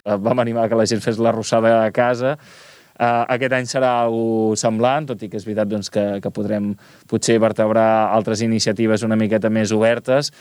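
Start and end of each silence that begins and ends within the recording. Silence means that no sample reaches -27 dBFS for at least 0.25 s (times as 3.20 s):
2.34–3.00 s
6.73–7.09 s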